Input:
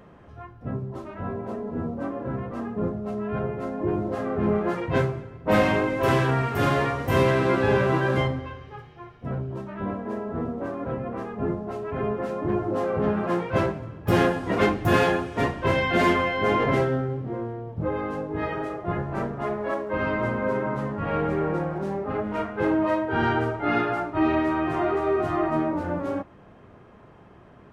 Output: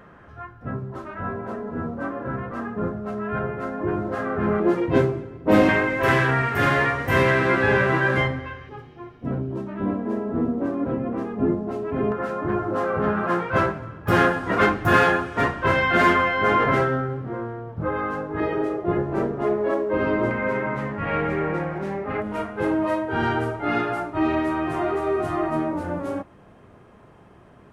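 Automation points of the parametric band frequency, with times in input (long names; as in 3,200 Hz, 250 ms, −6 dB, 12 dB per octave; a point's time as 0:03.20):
parametric band +10 dB 0.87 octaves
1,500 Hz
from 0:04.60 320 Hz
from 0:05.69 1,800 Hz
from 0:08.69 280 Hz
from 0:12.12 1,400 Hz
from 0:18.40 370 Hz
from 0:20.31 2,100 Hz
from 0:22.22 10,000 Hz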